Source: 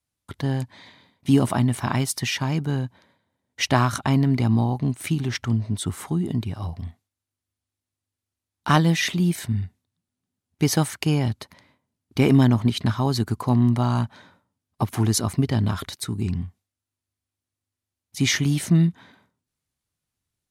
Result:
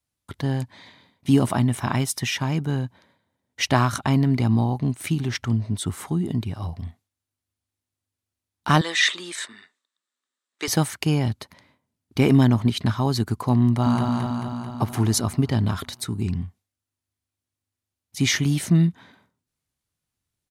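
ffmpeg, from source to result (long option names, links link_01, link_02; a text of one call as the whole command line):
ffmpeg -i in.wav -filter_complex "[0:a]asettb=1/sr,asplit=3[link_01][link_02][link_03];[link_01]atrim=end=1.644[link_04];[link_02]atrim=start=1.64:end=2.8,asetpts=PTS-STARTPTS,afade=type=in:duration=0.004:curve=qsin,afade=type=out:start_time=1.156:duration=0.004:curve=qsin,bandreject=frequency=4500:width=12[link_05];[link_03]atrim=start=2.796[link_06];[link_04][link_05]acrossfade=duration=0.004:curve1=hsin:curve2=qsin[link_07];[link_07][link_06]acrossfade=duration=0.004:curve1=qsin:curve2=hsin,asettb=1/sr,asplit=3[link_08][link_09][link_10];[link_08]atrim=end=8.814[link_11];[link_09]atrim=start=8.81:end=10.68,asetpts=PTS-STARTPTS,afade=type=in:duration=0.004:curve=qsin,afade=type=out:start_time=1.866:duration=0.004:curve=qsin,highpass=frequency=400:width=0.5412,highpass=frequency=400:width=1.3066,equalizer=frequency=410:width_type=q:width=4:gain=-4,equalizer=frequency=740:width_type=q:width=4:gain=-8,equalizer=frequency=1200:width_type=q:width=4:gain=8,equalizer=frequency=1800:width_type=q:width=4:gain=8,equalizer=frequency=3700:width_type=q:width=4:gain=8,equalizer=frequency=7700:width_type=q:width=4:gain=7,lowpass=frequency=9100:width=0.5412,lowpass=frequency=9100:width=1.3066[link_12];[link_10]atrim=start=10.676[link_13];[link_11][link_12]acrossfade=duration=0.004:curve1=hsin:curve2=qsin[link_14];[link_14][link_13]acrossfade=duration=0.004:curve1=qsin:curve2=hsin,asplit=2[link_15][link_16];[link_16]afade=type=in:start_time=13.64:duration=0.01,afade=type=out:start_time=14.04:duration=0.01,aecho=0:1:220|440|660|880|1100|1320|1540|1760|1980|2200:0.707946|0.460165|0.299107|0.19442|0.126373|0.0821423|0.0533925|0.0347051|0.0225583|0.0146629[link_17];[link_15][link_17]amix=inputs=2:normalize=0" out.wav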